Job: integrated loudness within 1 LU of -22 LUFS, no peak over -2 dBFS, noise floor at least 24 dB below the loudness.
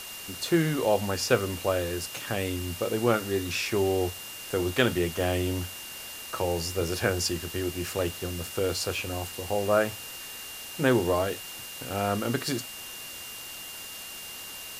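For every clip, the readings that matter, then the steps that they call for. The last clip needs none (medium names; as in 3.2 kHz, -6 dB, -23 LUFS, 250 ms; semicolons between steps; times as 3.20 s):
steady tone 2.8 kHz; tone level -43 dBFS; noise floor -41 dBFS; noise floor target -53 dBFS; loudness -29.0 LUFS; peak level -7.5 dBFS; loudness target -22.0 LUFS
-> band-stop 2.8 kHz, Q 30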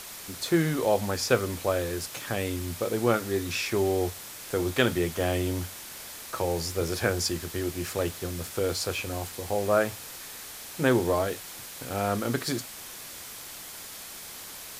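steady tone not found; noise floor -42 dBFS; noise floor target -54 dBFS
-> noise reduction 12 dB, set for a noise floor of -42 dBFS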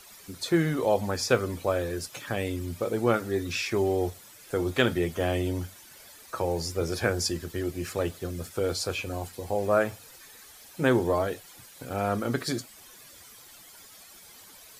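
noise floor -51 dBFS; noise floor target -53 dBFS
-> noise reduction 6 dB, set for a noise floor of -51 dBFS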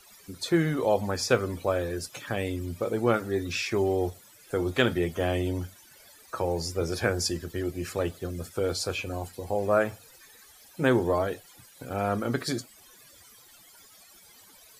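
noise floor -55 dBFS; loudness -28.5 LUFS; peak level -7.5 dBFS; loudness target -22.0 LUFS
-> trim +6.5 dB; peak limiter -2 dBFS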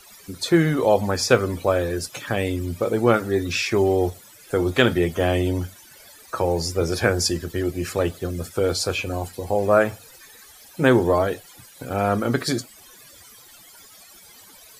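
loudness -22.0 LUFS; peak level -2.0 dBFS; noise floor -48 dBFS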